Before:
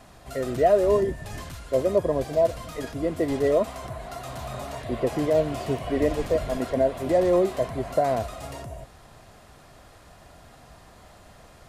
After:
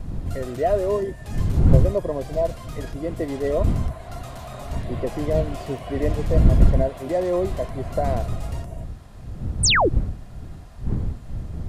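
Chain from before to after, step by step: wind noise 92 Hz -21 dBFS; painted sound fall, 9.63–9.89 s, 280–10000 Hz -15 dBFS; trim -2 dB

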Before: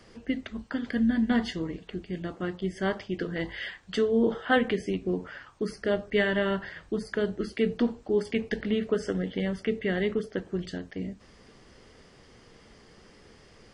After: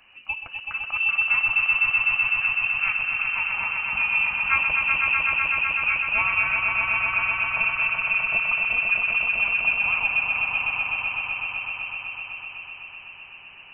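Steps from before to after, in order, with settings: frequency inversion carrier 2.9 kHz; echo with a slow build-up 126 ms, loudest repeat 5, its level -4.5 dB; trim -1 dB

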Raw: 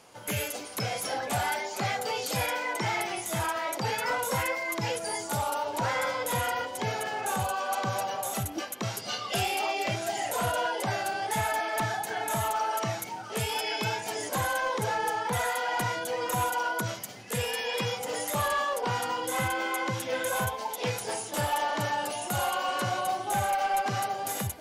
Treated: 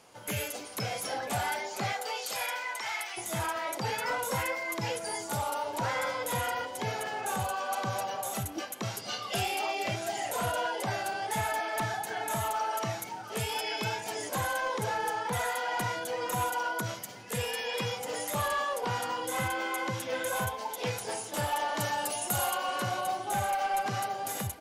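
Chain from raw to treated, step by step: 1.92–3.16 s: high-pass 460 Hz -> 1.3 kHz 12 dB/octave; 21.76–22.55 s: treble shelf 5.6 kHz -> 8.5 kHz +10.5 dB; feedback delay 504 ms, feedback 57%, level -22.5 dB; trim -2.5 dB

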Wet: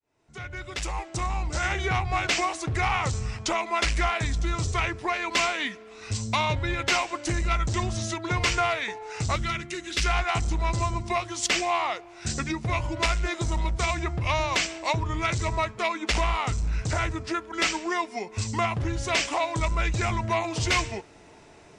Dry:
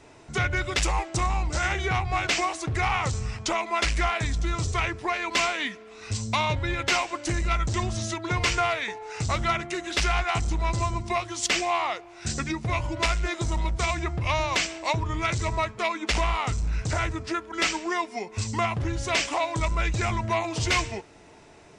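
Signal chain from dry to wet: fade-in on the opening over 1.84 s; 9.36–10.06 s: peaking EQ 770 Hz -13.5 dB 1.3 oct

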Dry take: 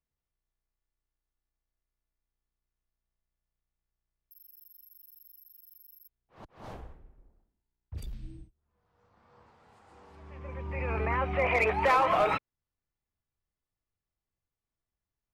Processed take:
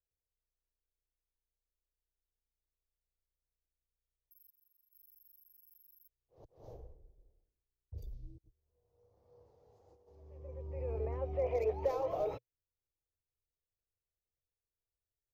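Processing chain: 4.50–4.93 s: expander -47 dBFS; FFT filter 120 Hz 0 dB, 210 Hz -13 dB, 480 Hz +5 dB, 1.4 kHz -23 dB, 2.6 kHz -20 dB, 6.3 kHz -4 dB, 8.9 kHz -23 dB, 13 kHz -1 dB; 8.38–10.08 s: compressor with a negative ratio -59 dBFS, ratio -0.5; trim -6 dB

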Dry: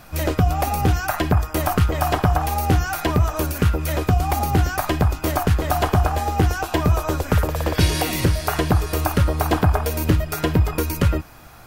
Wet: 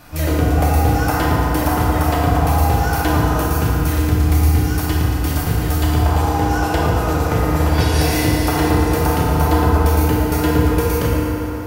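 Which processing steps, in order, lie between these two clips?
3.42–5.97 s: peaking EQ 730 Hz -12 dB 1.9 oct; compression, threshold -18 dBFS, peak gain reduction 6.5 dB; reverberation RT60 4.0 s, pre-delay 3 ms, DRR -6 dB; trim -1 dB

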